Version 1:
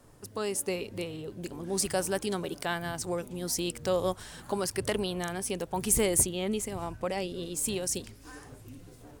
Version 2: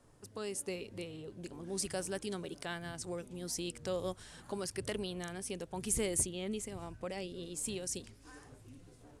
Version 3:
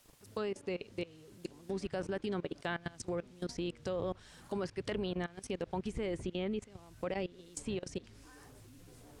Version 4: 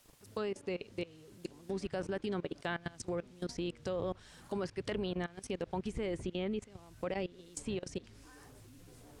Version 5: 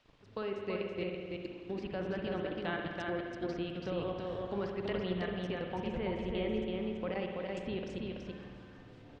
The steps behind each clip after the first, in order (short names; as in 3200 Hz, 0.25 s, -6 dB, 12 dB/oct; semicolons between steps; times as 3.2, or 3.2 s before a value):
LPF 11000 Hz 24 dB/oct; dynamic EQ 900 Hz, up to -5 dB, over -44 dBFS, Q 1.2; gain -7 dB
level quantiser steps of 21 dB; requantised 12-bit, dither triangular; treble ducked by the level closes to 2500 Hz, closed at -39 dBFS; gain +7 dB
nothing audible
ladder low-pass 4500 Hz, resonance 20%; echo 0.331 s -3.5 dB; spring tank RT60 2 s, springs 55 ms, chirp 30 ms, DRR 2.5 dB; gain +3.5 dB